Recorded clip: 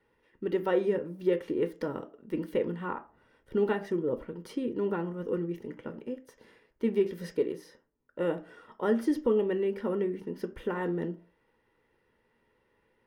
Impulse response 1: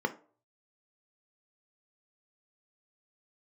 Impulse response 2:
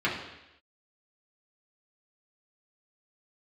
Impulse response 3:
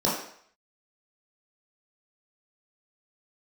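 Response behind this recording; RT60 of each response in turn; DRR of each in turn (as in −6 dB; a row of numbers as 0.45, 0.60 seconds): 1; 0.45, 0.90, 0.60 seconds; 7.0, −7.0, −7.5 decibels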